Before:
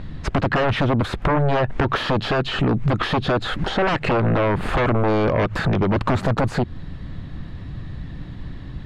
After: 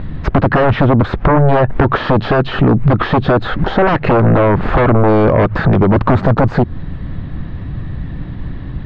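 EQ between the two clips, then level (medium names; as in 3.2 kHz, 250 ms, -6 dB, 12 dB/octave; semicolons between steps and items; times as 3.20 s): distance through air 160 m; treble shelf 5.4 kHz -11 dB; dynamic bell 2.7 kHz, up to -4 dB, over -43 dBFS, Q 1.4; +9.0 dB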